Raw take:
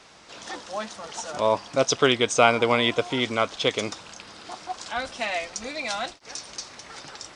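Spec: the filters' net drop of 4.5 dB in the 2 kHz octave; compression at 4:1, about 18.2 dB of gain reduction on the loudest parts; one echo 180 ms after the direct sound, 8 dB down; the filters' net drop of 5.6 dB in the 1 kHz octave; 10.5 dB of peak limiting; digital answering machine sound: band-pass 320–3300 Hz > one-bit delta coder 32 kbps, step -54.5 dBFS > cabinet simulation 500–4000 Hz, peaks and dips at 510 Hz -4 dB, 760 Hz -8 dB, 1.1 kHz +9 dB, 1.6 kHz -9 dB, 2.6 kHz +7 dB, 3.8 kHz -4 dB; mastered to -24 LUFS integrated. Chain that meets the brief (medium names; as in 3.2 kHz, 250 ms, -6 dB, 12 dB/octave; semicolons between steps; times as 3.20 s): peaking EQ 1 kHz -6 dB; peaking EQ 2 kHz -5 dB; compression 4:1, threshold -39 dBFS; peak limiter -33.5 dBFS; band-pass 320–3300 Hz; delay 180 ms -8 dB; one-bit delta coder 32 kbps, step -54.5 dBFS; cabinet simulation 500–4000 Hz, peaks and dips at 510 Hz -4 dB, 760 Hz -8 dB, 1.1 kHz +9 dB, 1.6 kHz -9 dB, 2.6 kHz +7 dB, 3.8 kHz -4 dB; trim +25.5 dB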